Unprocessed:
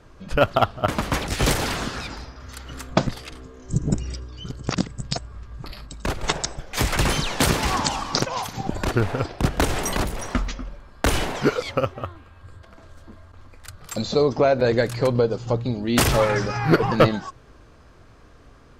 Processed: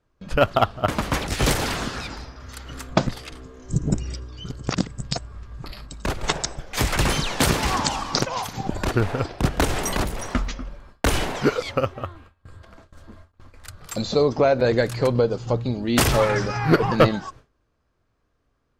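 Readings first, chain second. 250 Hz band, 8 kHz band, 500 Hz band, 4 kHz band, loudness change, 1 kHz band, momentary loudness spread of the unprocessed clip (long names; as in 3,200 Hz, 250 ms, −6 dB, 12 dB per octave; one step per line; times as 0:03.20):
0.0 dB, 0.0 dB, 0.0 dB, 0.0 dB, 0.0 dB, 0.0 dB, 18 LU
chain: noise gate with hold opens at −35 dBFS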